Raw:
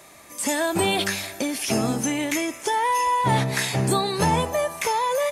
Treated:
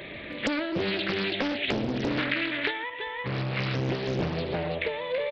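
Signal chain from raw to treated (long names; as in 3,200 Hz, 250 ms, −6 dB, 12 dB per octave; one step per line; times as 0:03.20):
mu-law and A-law mismatch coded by mu
0:02.18–0:02.90: drawn EQ curve 420 Hz 0 dB, 1,200 Hz +14 dB, 2,400 Hz +9 dB
convolution reverb, pre-delay 70 ms, DRR 9.5 dB
downsampling to 8,000 Hz
0:01.00–0:01.52: high-pass filter 150 Hz 12 dB per octave
single-tap delay 330 ms −6 dB
downward compressor 12 to 1, threshold −31 dBFS, peak gain reduction 22.5 dB
flat-topped bell 1,000 Hz −13.5 dB 1.3 octaves
highs frequency-modulated by the lows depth 0.9 ms
level +7.5 dB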